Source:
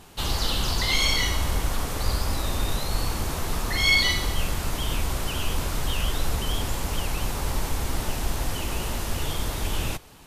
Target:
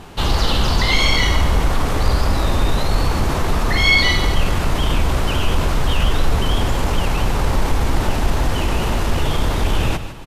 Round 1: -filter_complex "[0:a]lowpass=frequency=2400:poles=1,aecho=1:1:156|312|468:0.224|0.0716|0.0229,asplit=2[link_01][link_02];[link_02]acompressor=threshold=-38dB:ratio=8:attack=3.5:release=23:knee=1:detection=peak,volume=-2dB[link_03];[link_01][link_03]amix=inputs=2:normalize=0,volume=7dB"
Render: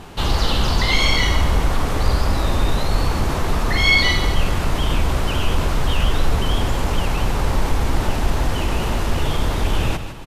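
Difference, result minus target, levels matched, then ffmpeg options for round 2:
downward compressor: peak gain reduction +7 dB
-filter_complex "[0:a]lowpass=frequency=2400:poles=1,aecho=1:1:156|312|468:0.224|0.0716|0.0229,asplit=2[link_01][link_02];[link_02]acompressor=threshold=-30dB:ratio=8:attack=3.5:release=23:knee=1:detection=peak,volume=-2dB[link_03];[link_01][link_03]amix=inputs=2:normalize=0,volume=7dB"

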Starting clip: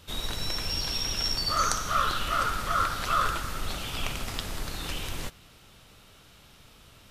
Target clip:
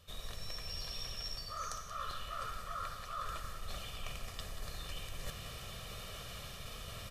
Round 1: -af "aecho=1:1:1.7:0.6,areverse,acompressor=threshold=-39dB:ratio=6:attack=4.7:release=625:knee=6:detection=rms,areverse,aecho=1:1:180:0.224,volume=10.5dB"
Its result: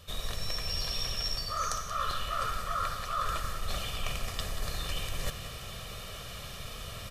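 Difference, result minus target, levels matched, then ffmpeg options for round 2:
downward compressor: peak gain reduction −9 dB
-af "aecho=1:1:1.7:0.6,areverse,acompressor=threshold=-50dB:ratio=6:attack=4.7:release=625:knee=6:detection=rms,areverse,aecho=1:1:180:0.224,volume=10.5dB"

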